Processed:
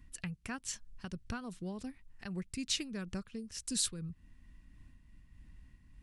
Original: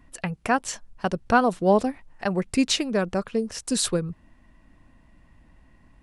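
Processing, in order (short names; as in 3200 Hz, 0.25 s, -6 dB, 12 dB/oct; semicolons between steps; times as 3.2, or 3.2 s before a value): compressor 1.5:1, threshold -39 dBFS, peak gain reduction 9.5 dB; passive tone stack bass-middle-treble 6-0-2; noise-modulated level, depth 65%; gain +14.5 dB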